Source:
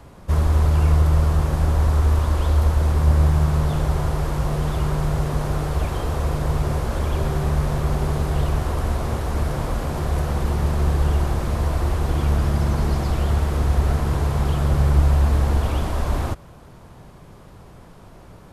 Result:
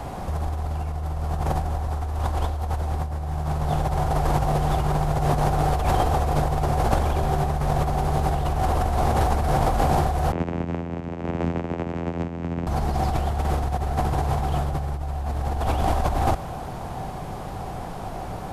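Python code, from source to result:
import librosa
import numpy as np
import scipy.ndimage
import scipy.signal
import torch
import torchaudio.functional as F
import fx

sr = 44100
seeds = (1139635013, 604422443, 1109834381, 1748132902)

y = fx.peak_eq(x, sr, hz=760.0, db=13.0, octaves=0.33)
y = fx.over_compress(y, sr, threshold_db=-26.0, ratio=-1.0)
y = fx.vocoder(y, sr, bands=4, carrier='saw', carrier_hz=84.7, at=(10.32, 12.67))
y = F.gain(torch.from_numpy(y), 3.0).numpy()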